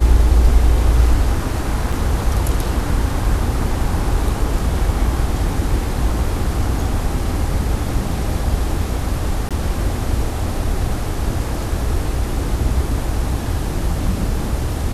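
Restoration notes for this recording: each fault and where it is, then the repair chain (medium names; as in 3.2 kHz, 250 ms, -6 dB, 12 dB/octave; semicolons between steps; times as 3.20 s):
1.92–1.93 s: dropout 5 ms
9.49–9.51 s: dropout 17 ms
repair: interpolate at 1.92 s, 5 ms; interpolate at 9.49 s, 17 ms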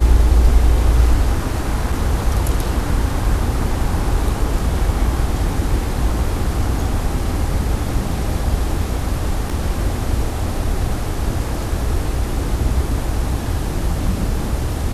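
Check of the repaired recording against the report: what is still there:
nothing left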